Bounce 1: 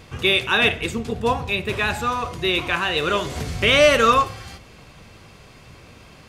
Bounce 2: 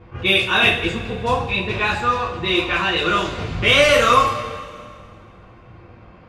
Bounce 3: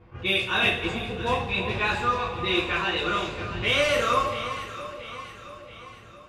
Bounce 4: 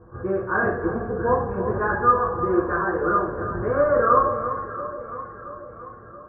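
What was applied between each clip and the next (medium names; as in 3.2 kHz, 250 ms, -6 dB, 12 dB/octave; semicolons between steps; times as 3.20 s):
level-controlled noise filter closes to 1.4 kHz, open at -14 dBFS; two-slope reverb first 0.28 s, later 2.1 s, from -18 dB, DRR -5 dB; attacks held to a fixed rise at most 320 dB/s; trim -3.5 dB
gain riding 2 s; on a send: echo whose repeats swap between lows and highs 339 ms, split 1.2 kHz, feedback 70%, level -9 dB; on the sum: trim -8.5 dB
rippled Chebyshev low-pass 1.7 kHz, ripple 6 dB; trim +8 dB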